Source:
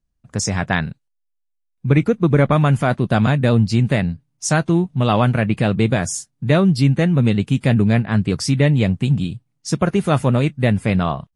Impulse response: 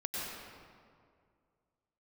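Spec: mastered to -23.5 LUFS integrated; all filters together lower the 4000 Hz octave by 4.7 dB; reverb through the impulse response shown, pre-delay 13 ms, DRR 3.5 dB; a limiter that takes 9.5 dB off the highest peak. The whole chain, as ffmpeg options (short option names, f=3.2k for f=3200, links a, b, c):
-filter_complex "[0:a]equalizer=f=4k:t=o:g=-6.5,alimiter=limit=-13dB:level=0:latency=1,asplit=2[a][b];[1:a]atrim=start_sample=2205,adelay=13[c];[b][c]afir=irnorm=-1:irlink=0,volume=-7.5dB[d];[a][d]amix=inputs=2:normalize=0,volume=-2.5dB"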